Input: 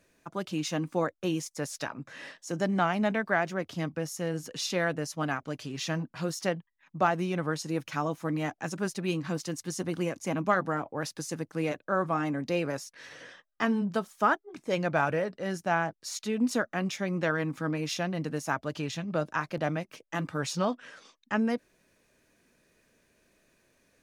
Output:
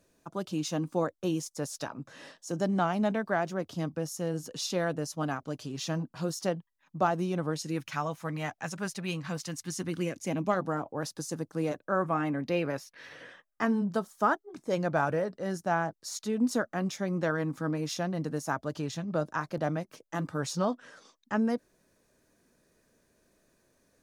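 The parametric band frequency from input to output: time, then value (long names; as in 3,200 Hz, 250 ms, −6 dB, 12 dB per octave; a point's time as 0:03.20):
parametric band −9 dB 1 octave
0:07.44 2,100 Hz
0:07.97 320 Hz
0:09.37 320 Hz
0:10.77 2,300 Hz
0:11.71 2,300 Hz
0:12.42 7,600 Hz
0:13.11 7,600 Hz
0:13.79 2,500 Hz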